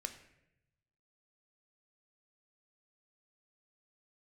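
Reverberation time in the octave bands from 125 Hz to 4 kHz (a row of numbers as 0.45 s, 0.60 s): 1.5 s, 1.1 s, 0.95 s, 0.70 s, 0.85 s, 0.60 s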